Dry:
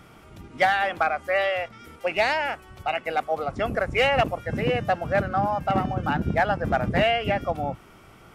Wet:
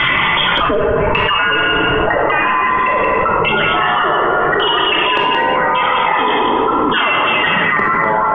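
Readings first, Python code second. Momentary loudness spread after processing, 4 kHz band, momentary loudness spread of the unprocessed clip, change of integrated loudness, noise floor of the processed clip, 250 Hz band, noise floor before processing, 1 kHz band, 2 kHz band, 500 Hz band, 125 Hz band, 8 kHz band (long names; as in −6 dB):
1 LU, +17.0 dB, 8 LU, +11.5 dB, −15 dBFS, +8.5 dB, −50 dBFS, +12.5 dB, +13.0 dB, +8.0 dB, +3.0 dB, can't be measured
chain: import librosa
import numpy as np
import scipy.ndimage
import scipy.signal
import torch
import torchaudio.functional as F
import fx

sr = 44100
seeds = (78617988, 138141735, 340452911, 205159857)

y = fx.spec_dropout(x, sr, seeds[0], share_pct=34)
y = fx.dereverb_blind(y, sr, rt60_s=0.7)
y = fx.low_shelf(y, sr, hz=94.0, db=-11.5)
y = fx.freq_invert(y, sr, carrier_hz=3400)
y = fx.filter_lfo_lowpass(y, sr, shape='square', hz=0.87, low_hz=470.0, high_hz=2300.0, q=2.2)
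y = y + 10.0 ** (-6.0 / 20.0) * np.pad(y, (int(174 * sr / 1000.0), 0))[:len(y)]
y = fx.room_shoebox(y, sr, seeds[1], volume_m3=1300.0, walls='mixed', distance_m=2.5)
y = fx.echo_pitch(y, sr, ms=478, semitones=-6, count=3, db_per_echo=-3.0)
y = fx.graphic_eq_15(y, sr, hz=(160, 400, 1000, 2500), db=(7, 6, 9, -7))
y = fx.env_flatten(y, sr, amount_pct=100)
y = y * 10.0 ** (-2.0 / 20.0)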